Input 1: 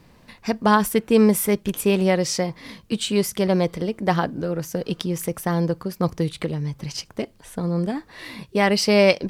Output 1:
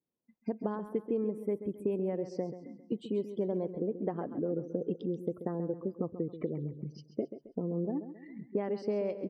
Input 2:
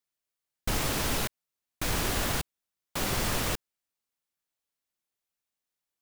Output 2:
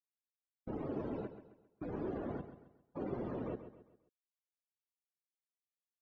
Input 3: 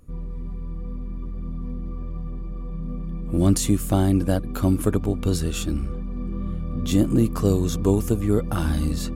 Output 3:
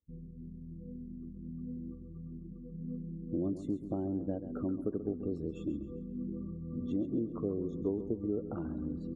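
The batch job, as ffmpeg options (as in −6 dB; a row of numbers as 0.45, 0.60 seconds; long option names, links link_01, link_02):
-filter_complex "[0:a]afftdn=noise_reduction=34:noise_floor=-30,acompressor=threshold=-26dB:ratio=10,bandpass=frequency=360:width_type=q:width=1.3:csg=0,asplit=2[link_01][link_02];[link_02]aecho=0:1:134|268|402|536:0.266|0.106|0.0426|0.017[link_03];[link_01][link_03]amix=inputs=2:normalize=0"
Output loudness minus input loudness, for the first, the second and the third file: −13.5, −12.5, −14.0 LU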